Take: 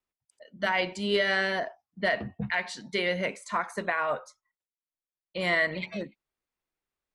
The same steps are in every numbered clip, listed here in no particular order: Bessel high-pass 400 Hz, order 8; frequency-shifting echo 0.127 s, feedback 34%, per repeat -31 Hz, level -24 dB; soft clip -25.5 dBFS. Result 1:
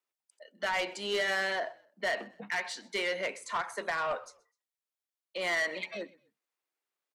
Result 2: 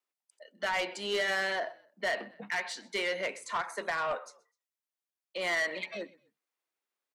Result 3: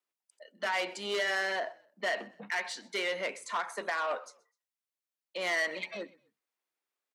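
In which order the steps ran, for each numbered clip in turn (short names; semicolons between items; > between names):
Bessel high-pass > soft clip > frequency-shifting echo; Bessel high-pass > frequency-shifting echo > soft clip; soft clip > Bessel high-pass > frequency-shifting echo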